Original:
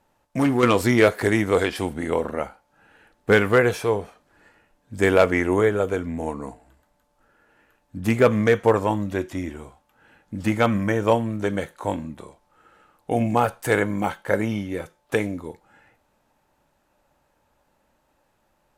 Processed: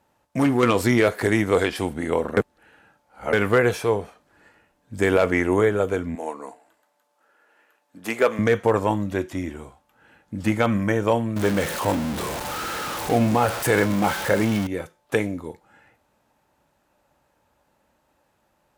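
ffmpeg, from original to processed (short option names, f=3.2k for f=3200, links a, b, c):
-filter_complex "[0:a]asettb=1/sr,asplit=3[a][b][c];[a]atrim=end=6.154[d];[b]atrim=start=6.15:end=8.39,asetpts=PTS-STARTPTS,afade=t=in:d=0.004:c=qsin,afade=t=out:st=2.236:d=0.004:c=qsin,highpass=430[e];[c]atrim=start=8.386[f];[d][e]acrossfade=d=0.004:c1=hsin:c2=qsin[g];[g][f]acrossfade=d=0.004:c1=qsin:c2=hsin,asettb=1/sr,asplit=3[h][i][j];[h]atrim=end=11.364[k];[i]atrim=start=11.36:end=14.67,asetpts=PTS-STARTPTS,afade=t=in:d=0.004:c=qsin,afade=t=out:st=3.306:d=0.004:c=qsin,aeval=exprs='val(0)+0.5*0.0631*sgn(val(0))':c=same[l];[j]atrim=start=14.666[m];[k][l]acrossfade=d=0.004:c1=hsin:c2=qsin[n];[n][m]acrossfade=d=0.004:c1=qsin:c2=hsin,asplit=3[o][p][q];[o]atrim=end=2.372[r];[p]atrim=start=2.368:end=3.332,asetpts=PTS-STARTPTS,areverse[s];[q]atrim=start=3.328[t];[r][s]acrossfade=d=0.004:c1=hsin:c2=hsin[u];[u][t]acrossfade=d=0.004:c1=hsin:c2=hsin,highpass=47,alimiter=level_in=6.5dB:limit=-1dB:release=50:level=0:latency=1,volume=-6dB"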